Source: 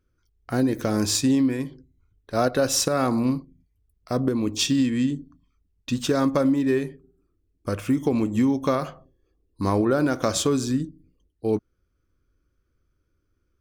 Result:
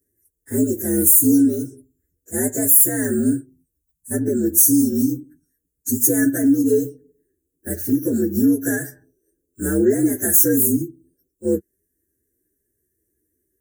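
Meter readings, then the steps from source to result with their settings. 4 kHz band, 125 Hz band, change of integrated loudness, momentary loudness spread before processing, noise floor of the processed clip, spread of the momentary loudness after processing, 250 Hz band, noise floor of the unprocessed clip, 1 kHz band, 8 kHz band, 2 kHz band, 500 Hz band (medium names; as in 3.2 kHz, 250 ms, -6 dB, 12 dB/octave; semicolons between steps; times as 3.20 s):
under -15 dB, -0.5 dB, +6.5 dB, 10 LU, -77 dBFS, 16 LU, +4.5 dB, -72 dBFS, under -10 dB, +11.5 dB, +2.5 dB, +2.0 dB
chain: frequency axis rescaled in octaves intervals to 122%; FFT filter 180 Hz 0 dB, 390 Hz +9 dB, 660 Hz -10 dB, 1.1 kHz -24 dB, 1.7 kHz +7 dB, 2.4 kHz -24 dB, 4.2 kHz -13 dB, 6.8 kHz +3 dB, 12 kHz +11 dB; time-frequency box 3.81–4.11 s, 290–4800 Hz -22 dB; high-pass 82 Hz 12 dB/octave; resonant high shelf 4.9 kHz +11.5 dB, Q 1.5; loudness maximiser +2.5 dB; trim -1 dB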